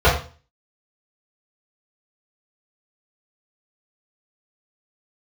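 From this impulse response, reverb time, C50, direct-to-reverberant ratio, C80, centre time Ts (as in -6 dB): 0.40 s, 6.0 dB, -10.5 dB, 10.5 dB, 32 ms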